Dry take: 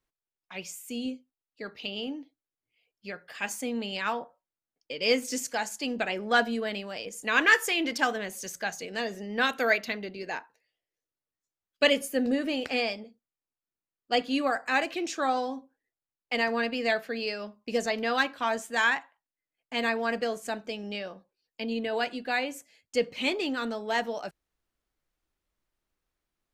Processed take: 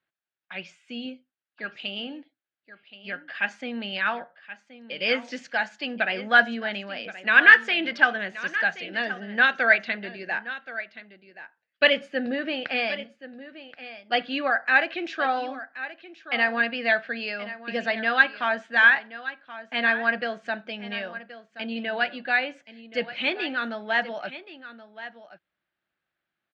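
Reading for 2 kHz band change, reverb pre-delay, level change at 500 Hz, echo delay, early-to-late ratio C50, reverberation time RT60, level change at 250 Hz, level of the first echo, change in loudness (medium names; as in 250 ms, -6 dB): +8.5 dB, no reverb, 0.0 dB, 1076 ms, no reverb, no reverb, -1.5 dB, -14.5 dB, +5.0 dB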